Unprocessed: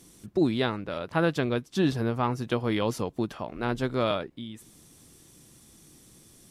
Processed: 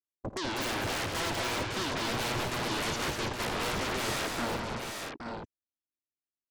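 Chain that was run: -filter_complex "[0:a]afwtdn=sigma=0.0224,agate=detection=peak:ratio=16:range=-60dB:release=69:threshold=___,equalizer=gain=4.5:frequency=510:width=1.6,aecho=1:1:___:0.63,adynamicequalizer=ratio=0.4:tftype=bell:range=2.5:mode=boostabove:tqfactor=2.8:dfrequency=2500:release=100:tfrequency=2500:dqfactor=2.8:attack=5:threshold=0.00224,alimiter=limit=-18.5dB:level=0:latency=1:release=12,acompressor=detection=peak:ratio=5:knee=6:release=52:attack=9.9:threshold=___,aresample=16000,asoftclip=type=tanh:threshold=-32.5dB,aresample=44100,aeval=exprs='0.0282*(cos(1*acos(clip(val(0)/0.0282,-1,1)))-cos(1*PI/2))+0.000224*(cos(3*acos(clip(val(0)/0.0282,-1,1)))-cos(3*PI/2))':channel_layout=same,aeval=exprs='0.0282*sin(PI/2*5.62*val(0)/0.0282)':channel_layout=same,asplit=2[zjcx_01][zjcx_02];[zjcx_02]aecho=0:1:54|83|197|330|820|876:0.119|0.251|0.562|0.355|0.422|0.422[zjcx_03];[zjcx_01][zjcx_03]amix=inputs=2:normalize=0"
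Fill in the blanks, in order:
-47dB, 3, -29dB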